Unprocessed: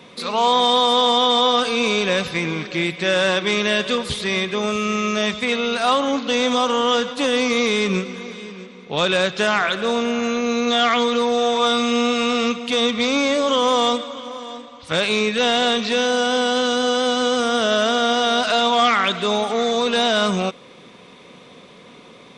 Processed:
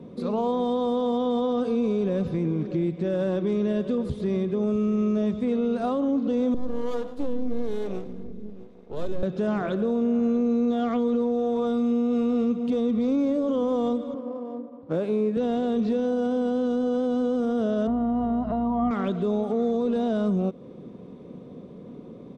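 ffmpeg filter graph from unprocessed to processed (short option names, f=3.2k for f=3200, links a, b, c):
-filter_complex "[0:a]asettb=1/sr,asplit=3[a][b][c];[a]atrim=end=6.544[d];[b]atrim=start=6.54:end=9.23,asetpts=PTS-STARTPTS,afade=t=in:d=0.004:c=qsin,afade=t=out:st=2.686:d=0.004:c=qsin,lowshelf=f=150:g=-6.5,aeval=exprs='max(val(0),0)':c=same,acrossover=split=410[e][f];[e]aeval=exprs='val(0)*(1-0.7/2+0.7/2*cos(2*PI*1.1*n/s))':c=same[g];[f]aeval=exprs='val(0)*(1-0.7/2-0.7/2*cos(2*PI*1.1*n/s))':c=same[h];[g][h]amix=inputs=2:normalize=0[i];[c]atrim=start=9.226[j];[d][i]acrossfade=d=0.004:c1=hsin:c2=qsin[k];[k][j]acrossfade=d=0.004:c1=qsin:c2=hsin,asettb=1/sr,asplit=3[l][m][n];[l]atrim=end=14.144[o];[m]atrim=start=14.14:end=15.37,asetpts=PTS-STARTPTS,afade=t=in:d=0.004:c=qsin,afade=t=out:st=1.226:d=0.004:c=qsin,highshelf=f=3.2k:g=-10,adynamicsmooth=sensitivity=6:basefreq=1k,highpass=220,lowpass=7.6k[p];[n]atrim=start=15.366[q];[o][p]acrossfade=d=0.004:c1=hsin:c2=qsin[r];[r][q]acrossfade=d=0.004:c1=qsin:c2=hsin,asettb=1/sr,asplit=3[s][t][u];[s]atrim=end=17.874[v];[t]atrim=start=17.87:end=18.91,asetpts=PTS-STARTPTS,afade=t=in:d=0.004:c=qsin,afade=t=out:st=1.036:d=0.004:c=qsin,lowpass=1.3k,aecho=1:1:1:0.68,atrim=end_sample=45864,aeval=exprs='val(0)+0.00891*(sin(2*PI*60*n/s)+sin(2*PI*2*60*n/s)/2+sin(2*PI*3*60*n/s)/3+sin(2*PI*4*60*n/s)/4+sin(2*PI*5*60*n/s)/5)':c=same[w];[u]atrim=start=18.906[x];[v][w]acrossfade=d=0.004:c1=hsin:c2=qsin[y];[y][x]acrossfade=d=0.004:c1=qsin:c2=hsin,firequalizer=gain_entry='entry(280,0);entry(860,-16);entry(2100,-28)':delay=0.05:min_phase=1,alimiter=limit=-24dB:level=0:latency=1:release=156,volume=6.5dB"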